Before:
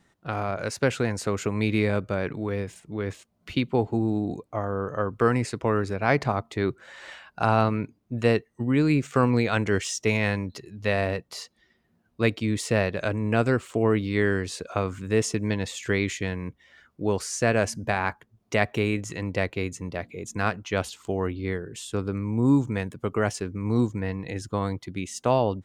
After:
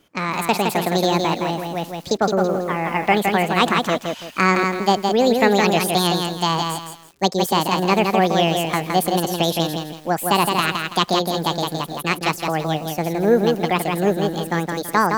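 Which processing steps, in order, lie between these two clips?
wide varispeed 1.69×; lo-fi delay 0.165 s, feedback 35%, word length 8-bit, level -4 dB; gain +5 dB

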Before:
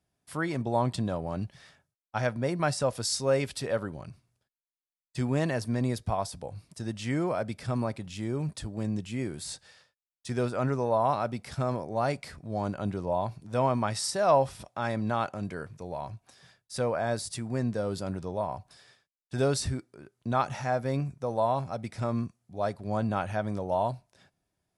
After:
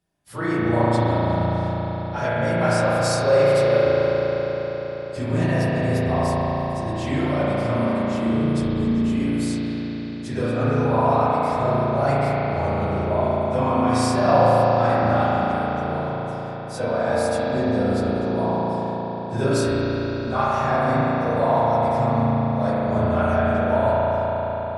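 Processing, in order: phase scrambler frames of 50 ms; flange 0.81 Hz, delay 5.8 ms, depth 4.8 ms, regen +78%; reverb RT60 5.2 s, pre-delay 35 ms, DRR -8 dB; gain +5.5 dB

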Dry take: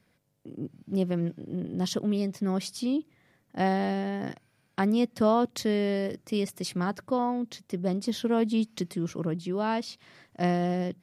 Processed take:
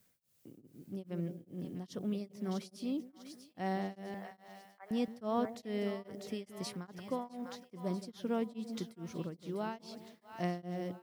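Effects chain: 4.14–4.91 elliptic band-pass 530–2200 Hz; on a send: split-band echo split 690 Hz, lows 0.17 s, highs 0.648 s, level -10 dB; on the sum: added noise blue -63 dBFS; beating tremolo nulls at 2.4 Hz; gain -8.5 dB

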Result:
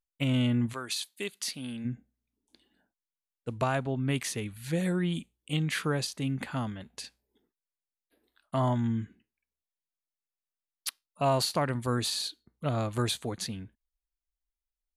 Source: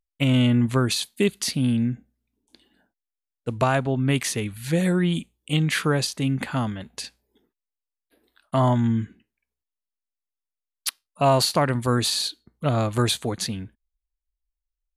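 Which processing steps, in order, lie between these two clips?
0.72–1.84 HPF 1300 Hz -> 530 Hz 6 dB/oct; gain -7.5 dB

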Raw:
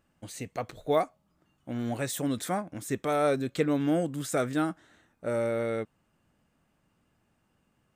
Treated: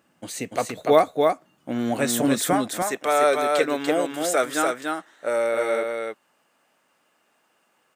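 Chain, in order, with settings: HPF 200 Hz 12 dB/oct, from 2.53 s 540 Hz; echo 0.291 s -3.5 dB; gain +9 dB

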